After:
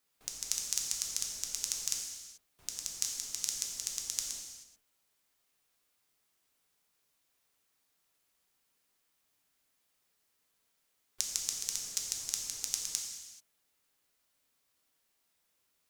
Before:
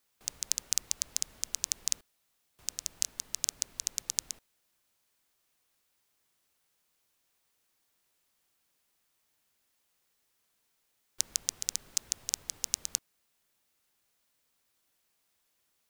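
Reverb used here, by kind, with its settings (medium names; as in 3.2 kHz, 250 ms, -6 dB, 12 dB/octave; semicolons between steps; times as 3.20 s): gated-style reverb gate 460 ms falling, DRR 0 dB; trim -4 dB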